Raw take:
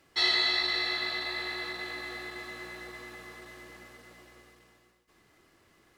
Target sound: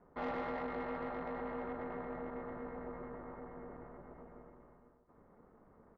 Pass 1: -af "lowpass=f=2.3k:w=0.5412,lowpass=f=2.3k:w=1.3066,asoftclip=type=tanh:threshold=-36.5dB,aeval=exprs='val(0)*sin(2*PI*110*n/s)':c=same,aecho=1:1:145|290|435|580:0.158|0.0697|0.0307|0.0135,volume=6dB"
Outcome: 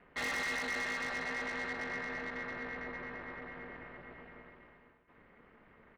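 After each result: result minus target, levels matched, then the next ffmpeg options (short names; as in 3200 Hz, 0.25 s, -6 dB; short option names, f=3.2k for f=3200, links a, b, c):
2000 Hz band +9.5 dB; echo 43 ms late
-af "lowpass=f=1.1k:w=0.5412,lowpass=f=1.1k:w=1.3066,asoftclip=type=tanh:threshold=-36.5dB,aeval=exprs='val(0)*sin(2*PI*110*n/s)':c=same,aecho=1:1:145|290|435|580:0.158|0.0697|0.0307|0.0135,volume=6dB"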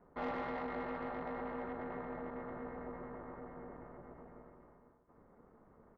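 echo 43 ms late
-af "lowpass=f=1.1k:w=0.5412,lowpass=f=1.1k:w=1.3066,asoftclip=type=tanh:threshold=-36.5dB,aeval=exprs='val(0)*sin(2*PI*110*n/s)':c=same,aecho=1:1:102|204|306|408:0.158|0.0697|0.0307|0.0135,volume=6dB"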